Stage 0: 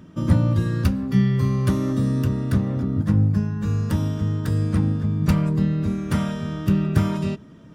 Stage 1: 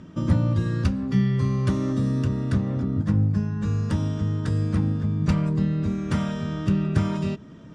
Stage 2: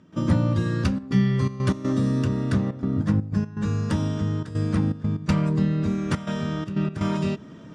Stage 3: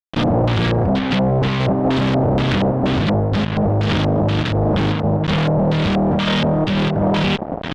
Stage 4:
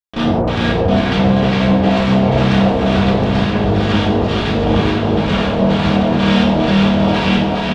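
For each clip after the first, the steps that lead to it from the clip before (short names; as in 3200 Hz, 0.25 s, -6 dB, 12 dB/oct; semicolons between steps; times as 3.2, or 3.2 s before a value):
LPF 8300 Hz 24 dB/oct; in parallel at 0 dB: compressor, threshold -29 dBFS, peak gain reduction 16.5 dB; on the sum: gain -4.5 dB
step gate ".xxxxxxx.xxx.x" 122 bpm -12 dB; low shelf 89 Hz -11.5 dB; gain +3.5 dB
fuzz box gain 47 dB, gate -40 dBFS; LFO low-pass square 2.1 Hz 700–3400 Hz; gain -3 dB
on a send: bouncing-ball echo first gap 0.41 s, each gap 0.75×, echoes 5; on the sum: non-linear reverb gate 0.2 s falling, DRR -4.5 dB; gain -4 dB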